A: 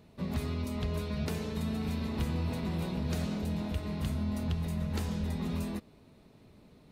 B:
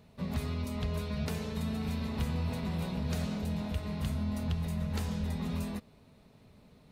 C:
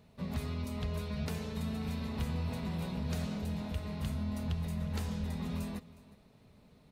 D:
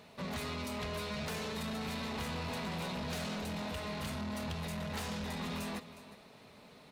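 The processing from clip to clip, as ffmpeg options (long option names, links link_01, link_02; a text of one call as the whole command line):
ffmpeg -i in.wav -af "equalizer=frequency=330:width_type=o:width=0.4:gain=-8.5" out.wav
ffmpeg -i in.wav -af "aecho=1:1:362:0.106,volume=-2.5dB" out.wav
ffmpeg -i in.wav -filter_complex "[0:a]asplit=2[link_01][link_02];[link_02]highpass=frequency=720:poles=1,volume=25dB,asoftclip=type=tanh:threshold=-24dB[link_03];[link_01][link_03]amix=inputs=2:normalize=0,lowpass=frequency=6700:poles=1,volume=-6dB,volume=-6.5dB" out.wav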